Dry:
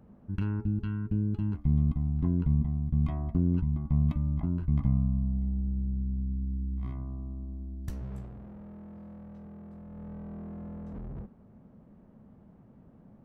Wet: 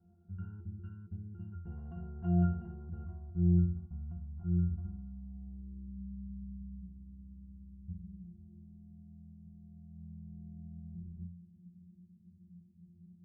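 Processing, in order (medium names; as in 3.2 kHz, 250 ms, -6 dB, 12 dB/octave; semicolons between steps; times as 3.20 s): in parallel at -2.5 dB: peak limiter -27.5 dBFS, peak gain reduction 11 dB; on the sum: low-pass sweep 1.4 kHz -> 190 Hz, 5.19–6.07 s; 1.65–3.05 s: overdrive pedal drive 29 dB, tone 2 kHz, clips at -15.5 dBFS; pitch-class resonator F, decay 0.52 s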